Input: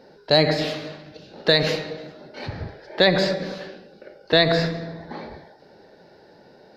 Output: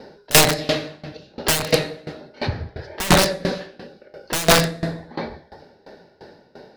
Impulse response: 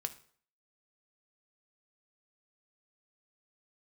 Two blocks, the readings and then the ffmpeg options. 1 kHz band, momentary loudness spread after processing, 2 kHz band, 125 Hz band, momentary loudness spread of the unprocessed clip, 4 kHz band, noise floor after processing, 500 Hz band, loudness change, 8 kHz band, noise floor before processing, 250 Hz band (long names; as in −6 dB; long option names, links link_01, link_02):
+5.5 dB, 20 LU, +2.5 dB, +2.5 dB, 19 LU, +1.0 dB, −55 dBFS, −1.0 dB, +2.0 dB, can't be measured, −52 dBFS, +1.5 dB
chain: -filter_complex "[0:a]aeval=exprs='(mod(4.73*val(0)+1,2)-1)/4.73':channel_layout=same,asplit=2[link_01][link_02];[1:a]atrim=start_sample=2205,asetrate=24696,aresample=44100,lowshelf=frequency=160:gain=4.5[link_03];[link_02][link_03]afir=irnorm=-1:irlink=0,volume=-0.5dB[link_04];[link_01][link_04]amix=inputs=2:normalize=0,aeval=exprs='val(0)*pow(10,-21*if(lt(mod(2.9*n/s,1),2*abs(2.9)/1000),1-mod(2.9*n/s,1)/(2*abs(2.9)/1000),(mod(2.9*n/s,1)-2*abs(2.9)/1000)/(1-2*abs(2.9)/1000))/20)':channel_layout=same,volume=4dB"